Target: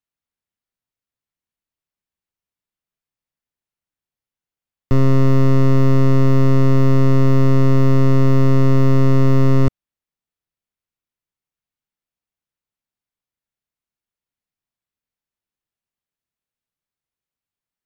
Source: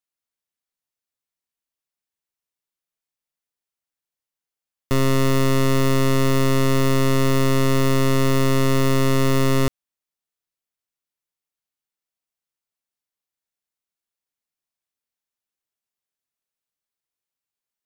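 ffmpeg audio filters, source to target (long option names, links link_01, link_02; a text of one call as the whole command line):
ffmpeg -i in.wav -filter_complex "[0:a]bass=frequency=250:gain=8,treble=frequency=4000:gain=-6,acrossover=split=1100[link_01][link_02];[link_02]asoftclip=type=tanh:threshold=-27dB[link_03];[link_01][link_03]amix=inputs=2:normalize=0" out.wav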